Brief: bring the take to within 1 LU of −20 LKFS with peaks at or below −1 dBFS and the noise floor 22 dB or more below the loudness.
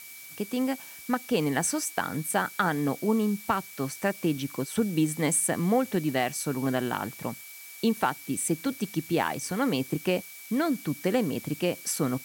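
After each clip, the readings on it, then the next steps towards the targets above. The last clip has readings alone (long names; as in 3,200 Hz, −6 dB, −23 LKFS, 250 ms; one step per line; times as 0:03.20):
interfering tone 2,300 Hz; level of the tone −48 dBFS; background noise floor −45 dBFS; target noise floor −51 dBFS; integrated loudness −28.5 LKFS; sample peak −11.5 dBFS; target loudness −20.0 LKFS
→ notch filter 2,300 Hz, Q 30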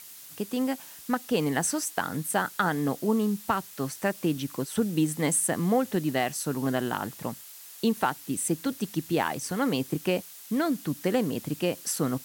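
interfering tone none found; background noise floor −47 dBFS; target noise floor −51 dBFS
→ noise reduction from a noise print 6 dB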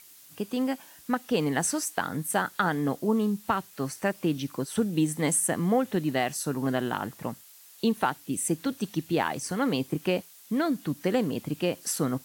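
background noise floor −52 dBFS; integrated loudness −28.5 LKFS; sample peak −12.0 dBFS; target loudness −20.0 LKFS
→ level +8.5 dB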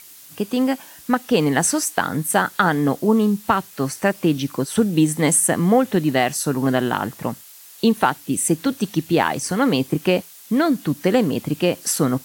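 integrated loudness −20.0 LKFS; sample peak −3.5 dBFS; background noise floor −44 dBFS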